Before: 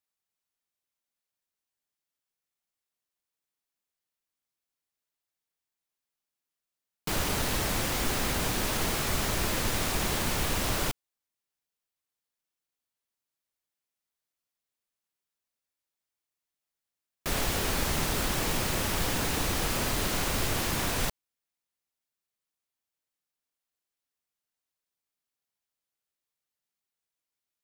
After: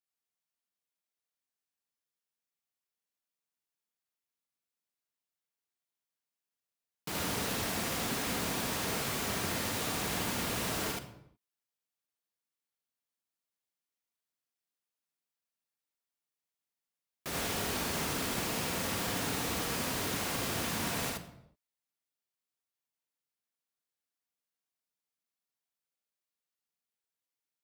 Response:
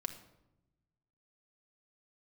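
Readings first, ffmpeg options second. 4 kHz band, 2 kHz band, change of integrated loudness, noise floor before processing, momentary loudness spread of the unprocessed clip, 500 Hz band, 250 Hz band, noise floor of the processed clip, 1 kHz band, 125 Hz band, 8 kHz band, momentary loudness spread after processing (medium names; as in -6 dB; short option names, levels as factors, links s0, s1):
-4.0 dB, -4.0 dB, -4.5 dB, under -85 dBFS, 3 LU, -4.0 dB, -3.5 dB, under -85 dBFS, -4.0 dB, -7.0 dB, -4.0 dB, 4 LU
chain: -filter_complex "[0:a]highpass=100,asplit=2[s0][s1];[1:a]atrim=start_sample=2205,afade=t=out:st=0.43:d=0.01,atrim=end_sample=19404,adelay=75[s2];[s1][s2]afir=irnorm=-1:irlink=0,volume=1.06[s3];[s0][s3]amix=inputs=2:normalize=0,volume=0.447"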